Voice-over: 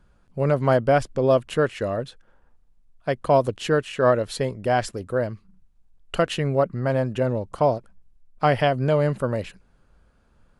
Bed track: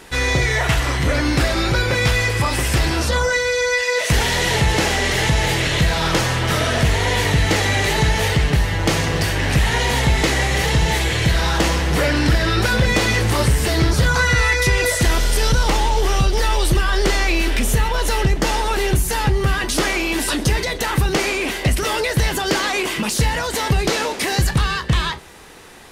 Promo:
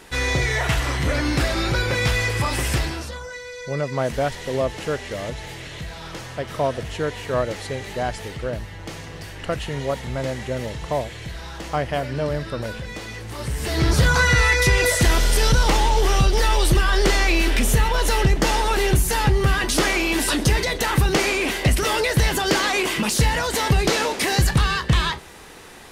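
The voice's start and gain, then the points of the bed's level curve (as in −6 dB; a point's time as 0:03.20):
3.30 s, −4.5 dB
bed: 0:02.74 −3.5 dB
0:03.20 −16.5 dB
0:13.27 −16.5 dB
0:13.93 −0.5 dB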